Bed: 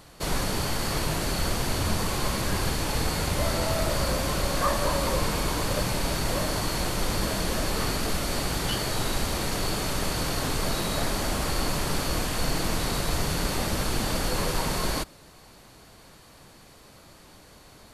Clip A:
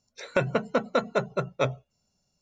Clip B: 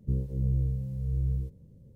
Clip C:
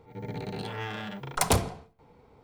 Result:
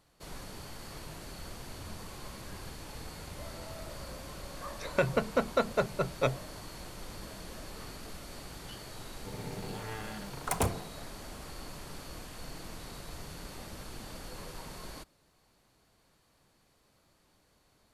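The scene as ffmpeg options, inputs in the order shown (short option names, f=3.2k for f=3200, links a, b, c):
-filter_complex "[0:a]volume=-17.5dB[a];[3:a]equalizer=f=4.4k:w=1.5:g=-9[b];[1:a]atrim=end=2.41,asetpts=PTS-STARTPTS,volume=-3dB,afade=t=in:d=0.004:c=hsin,afade=t=out:st=2.406:d=0.004:c=hsin,adelay=4620[c];[b]atrim=end=2.43,asetpts=PTS-STARTPTS,volume=-5.5dB,afade=t=in:d=0.004:c=hsin,afade=t=out:st=2.426:d=0.004:c=hsin,adelay=9100[d];[a][c][d]amix=inputs=3:normalize=0"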